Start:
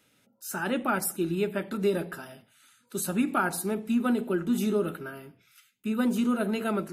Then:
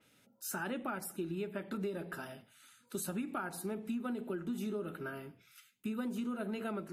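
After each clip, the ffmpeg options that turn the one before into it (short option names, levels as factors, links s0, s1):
-af "acompressor=threshold=0.02:ratio=6,adynamicequalizer=threshold=0.00141:dfrequency=4100:dqfactor=0.7:tfrequency=4100:tqfactor=0.7:attack=5:release=100:ratio=0.375:range=3:mode=cutabove:tftype=highshelf,volume=0.841"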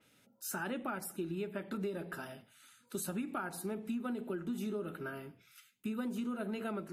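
-af anull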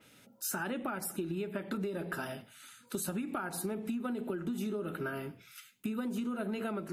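-af "acompressor=threshold=0.01:ratio=6,volume=2.37"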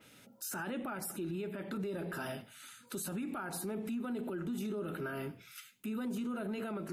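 -af "alimiter=level_in=2.66:limit=0.0631:level=0:latency=1:release=11,volume=0.376,volume=1.12"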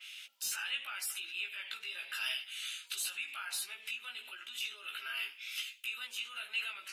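-filter_complex "[0:a]flanger=delay=15.5:depth=2.5:speed=0.88,highpass=f=2800:t=q:w=3.2,asplit=2[s0][s1];[s1]highpass=f=720:p=1,volume=2.24,asoftclip=type=tanh:threshold=0.0251[s2];[s0][s2]amix=inputs=2:normalize=0,lowpass=f=6000:p=1,volume=0.501,volume=2.66"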